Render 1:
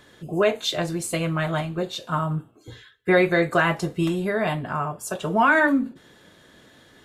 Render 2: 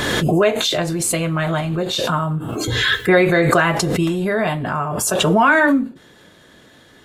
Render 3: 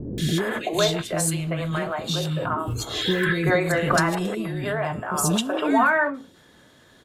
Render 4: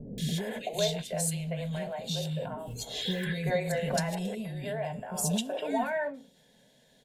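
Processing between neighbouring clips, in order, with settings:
backwards sustainer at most 22 dB/s; gain +4 dB
three bands offset in time lows, highs, mids 0.18/0.38 s, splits 380/2400 Hz; gain -4.5 dB
fixed phaser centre 330 Hz, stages 6; gain -6 dB

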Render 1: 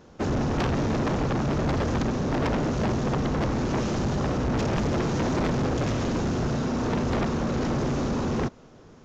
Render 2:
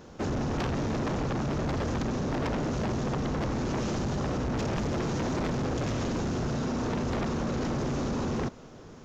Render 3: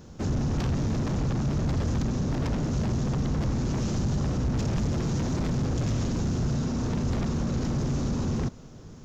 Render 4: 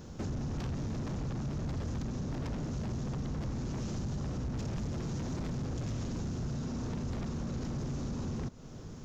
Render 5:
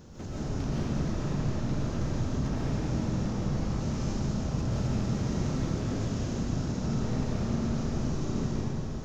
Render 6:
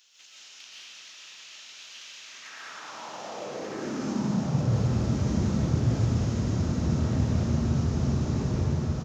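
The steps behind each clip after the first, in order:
high shelf 6900 Hz +4 dB; in parallel at 0 dB: negative-ratio compressor -32 dBFS, ratio -1; on the sum: gain -7.5 dB
tone controls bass +11 dB, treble +8 dB; gain -4.5 dB
compressor 2.5:1, threshold -38 dBFS, peak gain reduction 10 dB
digital reverb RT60 3.1 s, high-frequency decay 0.9×, pre-delay 90 ms, DRR -9 dB; gain -3 dB
high-pass sweep 2900 Hz -> 75 Hz, 2.15–5.04; echo 1.186 s -3.5 dB

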